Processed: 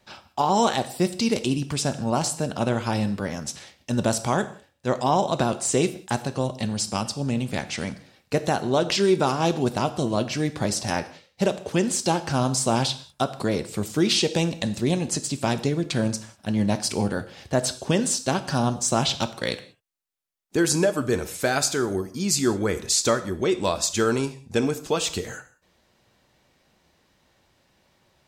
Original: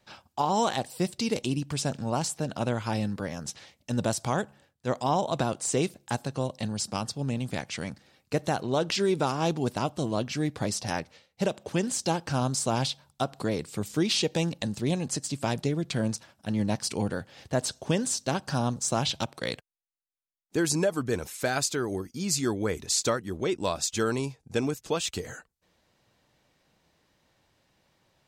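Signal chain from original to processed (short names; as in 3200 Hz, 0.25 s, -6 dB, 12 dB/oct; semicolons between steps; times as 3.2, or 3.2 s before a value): non-linear reverb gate 0.22 s falling, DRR 10 dB; gain +4.5 dB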